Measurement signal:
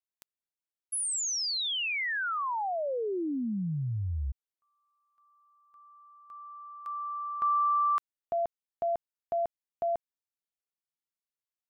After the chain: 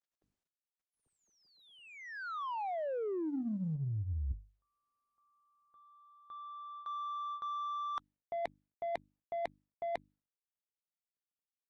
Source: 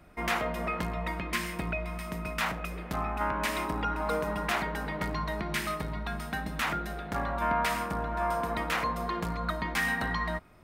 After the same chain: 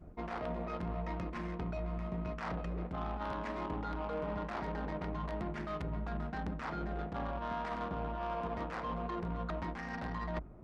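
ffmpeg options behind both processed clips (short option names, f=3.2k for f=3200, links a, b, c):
-af "bandreject=f=50:t=h:w=6,bandreject=f=100:t=h:w=6,bandreject=f=150:t=h:w=6,bandreject=f=200:t=h:w=6,bandreject=f=250:t=h:w=6,bandreject=f=300:t=h:w=6,areverse,acompressor=threshold=-42dB:ratio=12:attack=34:release=91:knee=6:detection=rms,areverse,aeval=exprs='(mod(39.8*val(0)+1,2)-1)/39.8':c=same,adynamicsmooth=sensitivity=5:basefreq=510,volume=7dB" -ar 48000 -c:a libopus -b:a 32k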